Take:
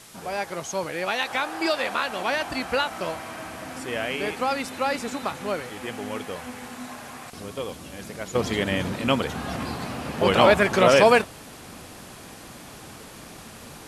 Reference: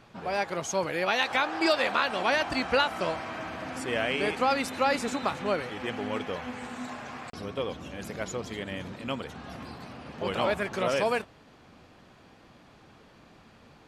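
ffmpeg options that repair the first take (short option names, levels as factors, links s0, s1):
-af "afwtdn=0.005,asetnsamples=n=441:p=0,asendcmd='8.35 volume volume -11dB',volume=1"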